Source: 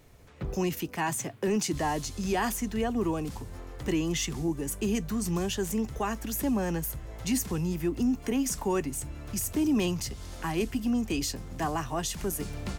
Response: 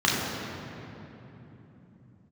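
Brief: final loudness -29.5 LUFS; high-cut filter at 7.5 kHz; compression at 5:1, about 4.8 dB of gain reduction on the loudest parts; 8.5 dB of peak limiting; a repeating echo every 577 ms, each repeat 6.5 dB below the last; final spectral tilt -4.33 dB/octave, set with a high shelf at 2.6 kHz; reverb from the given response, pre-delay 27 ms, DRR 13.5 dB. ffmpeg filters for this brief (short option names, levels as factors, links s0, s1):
-filter_complex "[0:a]lowpass=7500,highshelf=f=2600:g=7.5,acompressor=threshold=0.0398:ratio=5,alimiter=level_in=1.41:limit=0.0631:level=0:latency=1,volume=0.708,aecho=1:1:577|1154|1731|2308|2885|3462:0.473|0.222|0.105|0.0491|0.0231|0.0109,asplit=2[s0][s1];[1:a]atrim=start_sample=2205,adelay=27[s2];[s1][s2]afir=irnorm=-1:irlink=0,volume=0.0282[s3];[s0][s3]amix=inputs=2:normalize=0,volume=1.78"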